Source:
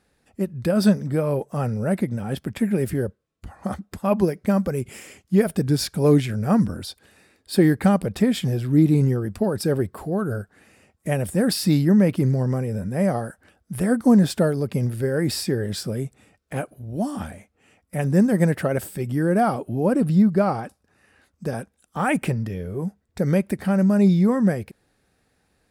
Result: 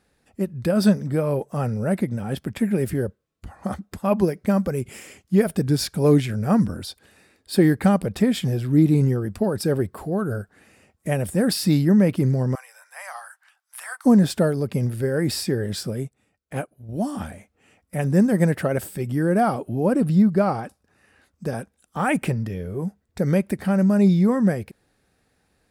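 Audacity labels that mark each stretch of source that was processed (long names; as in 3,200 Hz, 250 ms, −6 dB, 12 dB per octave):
12.550000	14.050000	Butterworth high-pass 890 Hz
15.900000	16.890000	expander for the loud parts, over −48 dBFS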